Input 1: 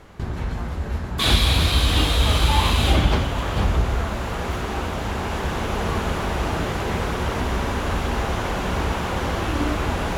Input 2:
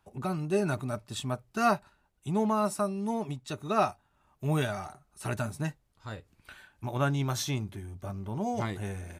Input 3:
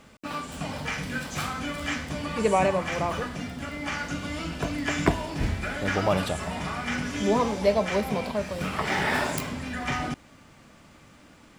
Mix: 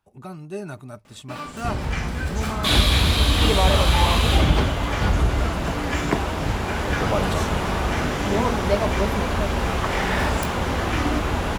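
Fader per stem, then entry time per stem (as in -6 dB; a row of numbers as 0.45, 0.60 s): 0.0, -4.5, -0.5 dB; 1.45, 0.00, 1.05 s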